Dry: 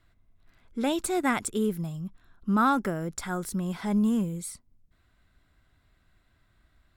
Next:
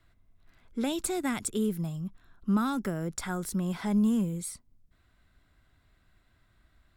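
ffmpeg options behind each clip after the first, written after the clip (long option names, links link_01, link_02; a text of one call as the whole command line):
ffmpeg -i in.wav -filter_complex "[0:a]acrossover=split=270|3000[link_01][link_02][link_03];[link_02]acompressor=threshold=-32dB:ratio=6[link_04];[link_01][link_04][link_03]amix=inputs=3:normalize=0" out.wav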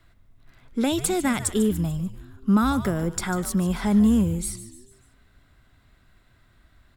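ffmpeg -i in.wav -filter_complex "[0:a]asplit=5[link_01][link_02][link_03][link_04][link_05];[link_02]adelay=146,afreqshift=-140,volume=-13dB[link_06];[link_03]adelay=292,afreqshift=-280,volume=-20.1dB[link_07];[link_04]adelay=438,afreqshift=-420,volume=-27.3dB[link_08];[link_05]adelay=584,afreqshift=-560,volume=-34.4dB[link_09];[link_01][link_06][link_07][link_08][link_09]amix=inputs=5:normalize=0,volume=7dB" out.wav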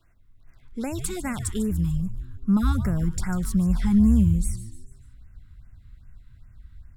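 ffmpeg -i in.wav -af "asubboost=boost=10:cutoff=130,afftfilt=real='re*(1-between(b*sr/1024,540*pow(4100/540,0.5+0.5*sin(2*PI*2.5*pts/sr))/1.41,540*pow(4100/540,0.5+0.5*sin(2*PI*2.5*pts/sr))*1.41))':imag='im*(1-between(b*sr/1024,540*pow(4100/540,0.5+0.5*sin(2*PI*2.5*pts/sr))/1.41,540*pow(4100/540,0.5+0.5*sin(2*PI*2.5*pts/sr))*1.41))':win_size=1024:overlap=0.75,volume=-5.5dB" out.wav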